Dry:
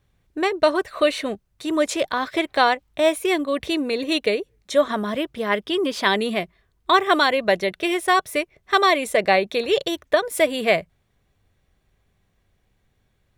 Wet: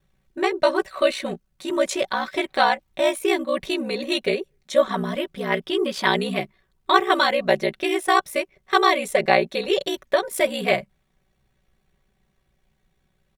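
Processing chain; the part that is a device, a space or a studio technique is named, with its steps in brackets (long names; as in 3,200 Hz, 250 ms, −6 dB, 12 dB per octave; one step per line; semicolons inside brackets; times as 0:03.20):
ring-modulated robot voice (ring modulation 31 Hz; comb filter 5.3 ms, depth 70%)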